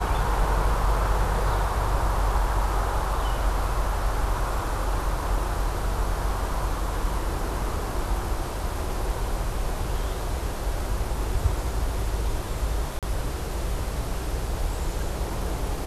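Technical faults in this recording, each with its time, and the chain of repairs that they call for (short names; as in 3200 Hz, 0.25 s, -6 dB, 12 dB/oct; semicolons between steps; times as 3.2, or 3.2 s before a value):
12.99–13.03 gap 37 ms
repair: interpolate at 12.99, 37 ms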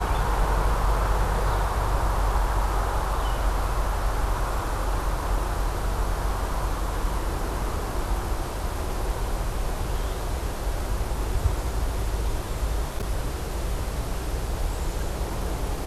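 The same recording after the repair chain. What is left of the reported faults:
none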